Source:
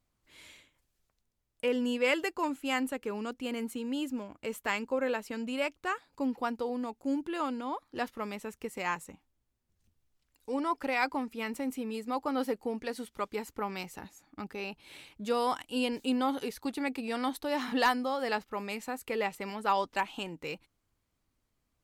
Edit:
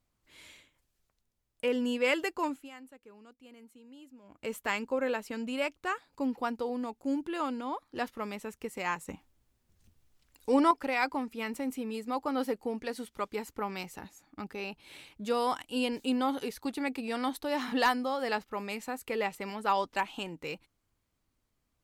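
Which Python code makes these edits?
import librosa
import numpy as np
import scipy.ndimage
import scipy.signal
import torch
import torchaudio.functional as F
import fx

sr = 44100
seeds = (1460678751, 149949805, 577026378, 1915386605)

y = fx.edit(x, sr, fx.fade_down_up(start_s=2.47, length_s=1.98, db=-18.5, fade_s=0.23),
    fx.clip_gain(start_s=9.08, length_s=1.63, db=8.0), tone=tone)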